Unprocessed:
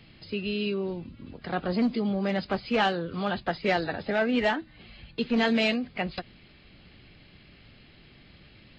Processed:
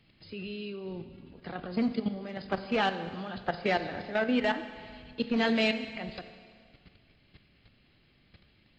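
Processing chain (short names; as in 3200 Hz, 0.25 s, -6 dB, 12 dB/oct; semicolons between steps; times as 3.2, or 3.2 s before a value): level quantiser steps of 13 dB; Schroeder reverb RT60 1.9 s, combs from 32 ms, DRR 10 dB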